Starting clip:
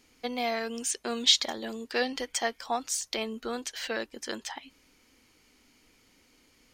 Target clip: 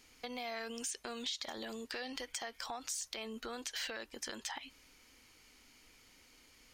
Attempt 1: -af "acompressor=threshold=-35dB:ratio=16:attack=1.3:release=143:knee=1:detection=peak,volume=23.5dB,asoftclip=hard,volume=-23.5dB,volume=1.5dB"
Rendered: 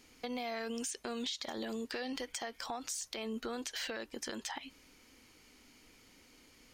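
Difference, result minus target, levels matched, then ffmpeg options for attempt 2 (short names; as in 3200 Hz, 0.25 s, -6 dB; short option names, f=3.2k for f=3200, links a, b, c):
250 Hz band +5.0 dB
-af "acompressor=threshold=-35dB:ratio=16:attack=1.3:release=143:knee=1:detection=peak,equalizer=f=250:t=o:w=2.6:g=-6.5,volume=23.5dB,asoftclip=hard,volume=-23.5dB,volume=1.5dB"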